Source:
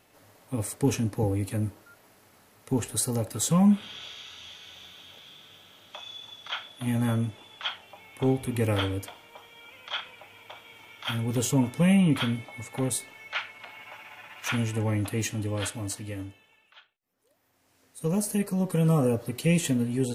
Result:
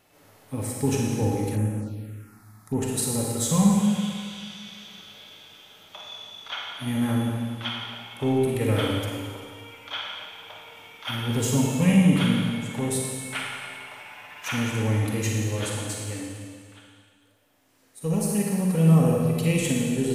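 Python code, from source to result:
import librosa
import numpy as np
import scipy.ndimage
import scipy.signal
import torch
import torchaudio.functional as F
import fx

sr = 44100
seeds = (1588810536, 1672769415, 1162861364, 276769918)

y = fx.rev_schroeder(x, sr, rt60_s=1.9, comb_ms=38, drr_db=-1.5)
y = fx.env_phaser(y, sr, low_hz=400.0, high_hz=4600.0, full_db=-22.0, at=(1.55, 2.82))
y = F.gain(torch.from_numpy(y), -1.0).numpy()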